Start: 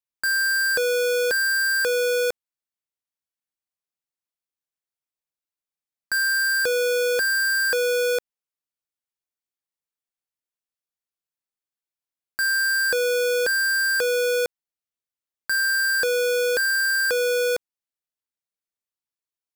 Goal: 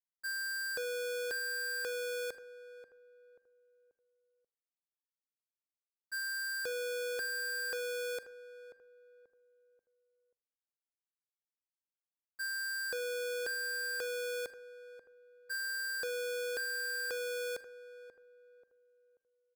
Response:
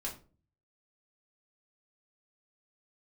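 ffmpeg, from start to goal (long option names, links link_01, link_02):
-filter_complex "[0:a]agate=range=-33dB:threshold=-14dB:ratio=3:detection=peak,asplit=2[link_01][link_02];[link_02]adelay=535,lowpass=frequency=1100:poles=1,volume=-12dB,asplit=2[link_03][link_04];[link_04]adelay=535,lowpass=frequency=1100:poles=1,volume=0.38,asplit=2[link_05][link_06];[link_06]adelay=535,lowpass=frequency=1100:poles=1,volume=0.38,asplit=2[link_07][link_08];[link_08]adelay=535,lowpass=frequency=1100:poles=1,volume=0.38[link_09];[link_01][link_03][link_05][link_07][link_09]amix=inputs=5:normalize=0,asplit=2[link_10][link_11];[1:a]atrim=start_sample=2205,adelay=42[link_12];[link_11][link_12]afir=irnorm=-1:irlink=0,volume=-17.5dB[link_13];[link_10][link_13]amix=inputs=2:normalize=0"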